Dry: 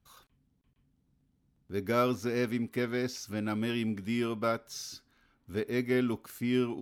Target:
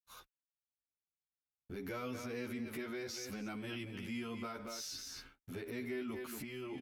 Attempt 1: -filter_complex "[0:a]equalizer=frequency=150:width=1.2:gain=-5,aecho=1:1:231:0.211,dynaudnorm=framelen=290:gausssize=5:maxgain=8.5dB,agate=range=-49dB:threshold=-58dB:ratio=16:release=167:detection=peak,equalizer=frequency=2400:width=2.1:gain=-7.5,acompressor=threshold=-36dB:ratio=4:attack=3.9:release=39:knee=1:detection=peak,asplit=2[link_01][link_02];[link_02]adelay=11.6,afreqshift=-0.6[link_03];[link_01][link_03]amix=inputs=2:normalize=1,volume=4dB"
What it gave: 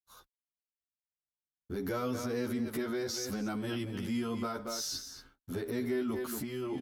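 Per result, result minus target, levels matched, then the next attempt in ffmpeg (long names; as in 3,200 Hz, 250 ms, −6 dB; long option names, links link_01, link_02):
downward compressor: peak gain reduction −8.5 dB; 2,000 Hz band −5.0 dB
-filter_complex "[0:a]equalizer=frequency=150:width=1.2:gain=-5,aecho=1:1:231:0.211,dynaudnorm=framelen=290:gausssize=5:maxgain=8.5dB,agate=range=-49dB:threshold=-58dB:ratio=16:release=167:detection=peak,equalizer=frequency=2400:width=2.1:gain=-7.5,acompressor=threshold=-46.5dB:ratio=4:attack=3.9:release=39:knee=1:detection=peak,asplit=2[link_01][link_02];[link_02]adelay=11.6,afreqshift=-0.6[link_03];[link_01][link_03]amix=inputs=2:normalize=1,volume=4dB"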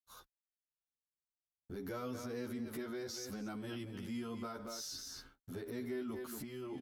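2,000 Hz band −5.0 dB
-filter_complex "[0:a]equalizer=frequency=150:width=1.2:gain=-5,aecho=1:1:231:0.211,dynaudnorm=framelen=290:gausssize=5:maxgain=8.5dB,agate=range=-49dB:threshold=-58dB:ratio=16:release=167:detection=peak,equalizer=frequency=2400:width=2.1:gain=3.5,acompressor=threshold=-46.5dB:ratio=4:attack=3.9:release=39:knee=1:detection=peak,asplit=2[link_01][link_02];[link_02]adelay=11.6,afreqshift=-0.6[link_03];[link_01][link_03]amix=inputs=2:normalize=1,volume=4dB"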